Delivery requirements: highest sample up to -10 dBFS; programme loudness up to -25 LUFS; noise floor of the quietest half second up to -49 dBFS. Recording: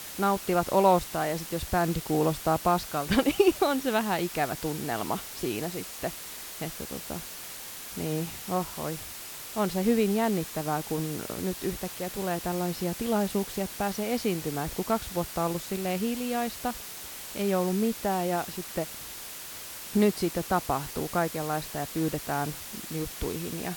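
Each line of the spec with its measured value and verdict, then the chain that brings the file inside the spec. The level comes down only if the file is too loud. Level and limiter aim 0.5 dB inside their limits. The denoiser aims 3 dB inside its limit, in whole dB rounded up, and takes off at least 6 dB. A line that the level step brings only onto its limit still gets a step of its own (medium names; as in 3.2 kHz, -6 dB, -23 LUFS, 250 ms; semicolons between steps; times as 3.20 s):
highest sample -9.0 dBFS: fail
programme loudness -29.5 LUFS: pass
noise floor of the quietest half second -41 dBFS: fail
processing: noise reduction 11 dB, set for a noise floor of -41 dBFS; peak limiter -10.5 dBFS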